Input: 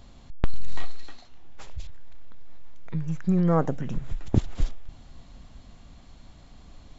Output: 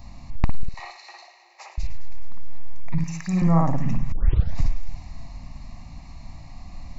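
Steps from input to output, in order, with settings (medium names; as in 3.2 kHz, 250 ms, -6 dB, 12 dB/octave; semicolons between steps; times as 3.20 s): static phaser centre 2.2 kHz, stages 8; 0.63–1.78 s: Chebyshev high-pass 350 Hz, order 10; 2.98–3.42 s: tilt EQ +4 dB/octave; feedback echo behind a high-pass 105 ms, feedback 74%, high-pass 2.1 kHz, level -12.5 dB; reverberation, pre-delay 54 ms, DRR 1 dB; 4.12 s: tape start 0.46 s; compression 4:1, threshold -21 dBFS, peak gain reduction 12 dB; trim +7.5 dB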